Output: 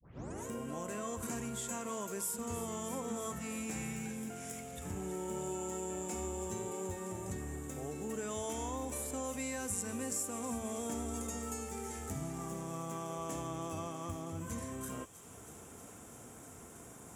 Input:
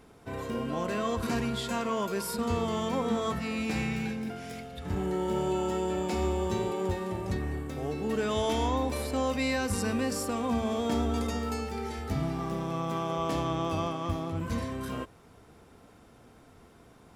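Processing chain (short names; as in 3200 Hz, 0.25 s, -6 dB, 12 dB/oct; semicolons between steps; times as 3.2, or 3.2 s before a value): tape start at the beginning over 0.47 s; HPF 67 Hz; resonant high shelf 5700 Hz +9 dB, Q 3; compressor 2:1, threshold -51 dBFS, peak gain reduction 16.5 dB; thin delay 0.321 s, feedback 83%, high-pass 2600 Hz, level -12 dB; gain +3 dB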